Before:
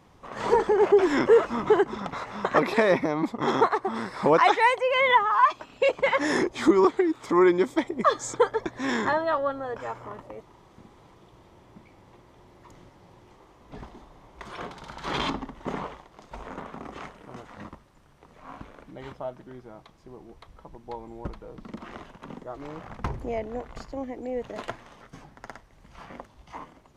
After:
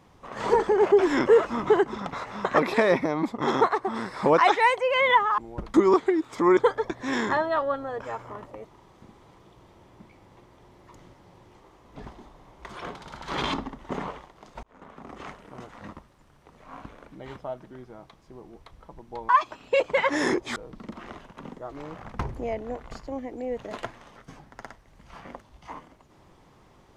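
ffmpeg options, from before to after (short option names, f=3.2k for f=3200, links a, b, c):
-filter_complex "[0:a]asplit=7[a][b][c][d][e][f][g];[a]atrim=end=5.382[h];[b]atrim=start=21.048:end=21.412[i];[c]atrim=start=6.648:end=7.482[j];[d]atrim=start=8.328:end=16.39,asetpts=PTS-STARTPTS,afade=t=out:st=8.058:d=0.004:c=hsin[k];[e]atrim=start=16.39:end=21.052,asetpts=PTS-STARTPTS,afade=t=in:d=0.65[l];[f]atrim=start=5.378:end=6.652[m];[g]atrim=start=21.408[n];[h][i]acrossfade=d=0.004:c1=hsin:c2=hsin[o];[o][j]acrossfade=d=0.004:c1=hsin:c2=hsin[p];[k][l]concat=n=2:v=0:a=1[q];[p][q]acrossfade=d=0.004:c1=hsin:c2=hsin[r];[r][m]acrossfade=d=0.004:c1=hsin:c2=hsin[s];[s][n]acrossfade=d=0.004:c1=hsin:c2=hsin"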